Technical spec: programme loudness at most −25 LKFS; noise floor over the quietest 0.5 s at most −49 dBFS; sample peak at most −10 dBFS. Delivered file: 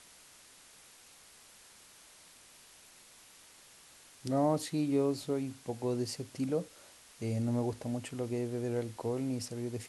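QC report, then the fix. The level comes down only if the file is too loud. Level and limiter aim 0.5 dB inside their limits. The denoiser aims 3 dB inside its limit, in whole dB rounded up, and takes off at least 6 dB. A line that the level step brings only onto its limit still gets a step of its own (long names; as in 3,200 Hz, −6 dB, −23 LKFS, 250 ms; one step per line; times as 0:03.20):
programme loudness −34.5 LKFS: in spec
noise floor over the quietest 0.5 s −58 dBFS: in spec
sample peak −18.0 dBFS: in spec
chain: no processing needed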